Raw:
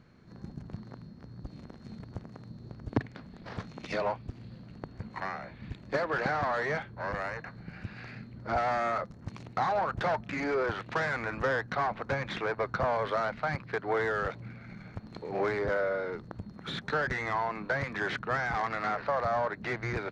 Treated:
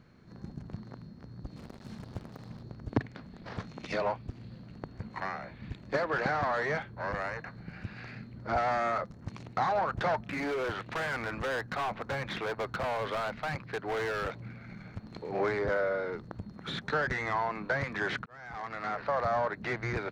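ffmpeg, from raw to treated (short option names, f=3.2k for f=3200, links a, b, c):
-filter_complex "[0:a]asettb=1/sr,asplit=3[a][b][c];[a]atrim=end=1.564[d];[b]atrim=start=1.56:end=2.63,asetpts=PTS-STARTPTS,afade=t=in:d=0.004:c=qsin,afade=t=out:st=1.066:d=0.004:c=qsin,acrusher=bits=7:mix=0:aa=0.5[e];[c]atrim=start=2.626[f];[d][e]acrossfade=d=0.004:c1=hsin:c2=qsin[g];[g][f]acrossfade=d=0.004:c1=qsin:c2=hsin,asettb=1/sr,asplit=3[h][i][j];[h]atrim=end=10.284[k];[i]atrim=start=10.28:end=15.33,asetpts=PTS-STARTPTS,afade=t=in:d=0.004:c=qsin,afade=t=out:st=5.046:d=0.004:c=qsin,volume=29.5dB,asoftclip=hard,volume=-29.5dB[l];[j]atrim=start=15.326[m];[k][l]acrossfade=d=0.004:c1=hsin:c2=qsin[n];[n][m]acrossfade=d=0.004:c1=qsin:c2=hsin,asplit=2[o][p];[o]atrim=end=18.26,asetpts=PTS-STARTPTS,afade=t=out:st=18.256:d=0.004:c=hsin[q];[p]atrim=start=18.26,asetpts=PTS-STARTPTS,afade=t=in:d=0.93[r];[q][r]concat=n=2:v=0:a=1"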